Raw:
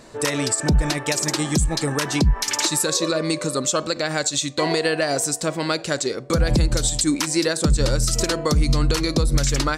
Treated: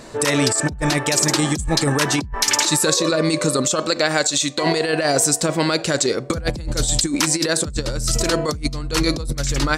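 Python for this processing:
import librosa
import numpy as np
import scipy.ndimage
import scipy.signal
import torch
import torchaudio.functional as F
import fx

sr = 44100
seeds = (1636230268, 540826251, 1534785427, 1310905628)

y = fx.peak_eq(x, sr, hz=77.0, db=-9.5, octaves=2.2, at=(3.79, 4.64))
y = fx.over_compress(y, sr, threshold_db=-22.0, ratio=-0.5)
y = y * 10.0 ** (3.5 / 20.0)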